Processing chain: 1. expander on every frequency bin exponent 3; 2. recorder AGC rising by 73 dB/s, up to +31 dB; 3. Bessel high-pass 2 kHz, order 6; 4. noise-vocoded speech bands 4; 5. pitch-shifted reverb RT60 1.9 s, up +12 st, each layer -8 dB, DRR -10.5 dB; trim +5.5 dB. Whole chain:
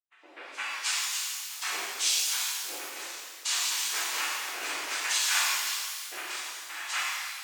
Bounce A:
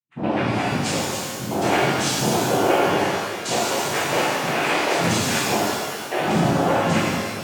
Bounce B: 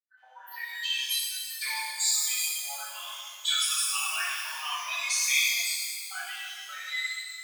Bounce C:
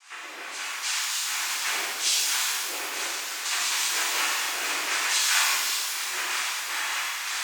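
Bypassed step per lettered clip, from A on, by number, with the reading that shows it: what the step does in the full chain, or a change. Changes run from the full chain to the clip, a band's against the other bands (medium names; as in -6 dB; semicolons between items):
3, 250 Hz band +26.5 dB; 4, 500 Hz band -9.5 dB; 1, 8 kHz band -1.5 dB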